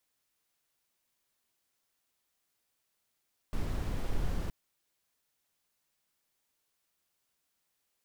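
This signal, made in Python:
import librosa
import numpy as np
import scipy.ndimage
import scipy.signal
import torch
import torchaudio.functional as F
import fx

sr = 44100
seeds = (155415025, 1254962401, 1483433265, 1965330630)

y = fx.noise_colour(sr, seeds[0], length_s=0.97, colour='brown', level_db=-31.0)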